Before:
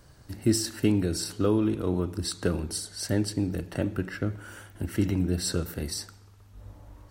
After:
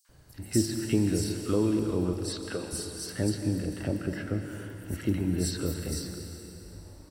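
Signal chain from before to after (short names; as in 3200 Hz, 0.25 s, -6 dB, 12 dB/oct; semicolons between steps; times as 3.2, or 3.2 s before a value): 2.04–2.64 weighting filter A; three bands offset in time highs, mids, lows 50/90 ms, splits 1100/5000 Hz; plate-style reverb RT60 3.4 s, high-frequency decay 0.95×, pre-delay 0.115 s, DRR 6 dB; gain -2 dB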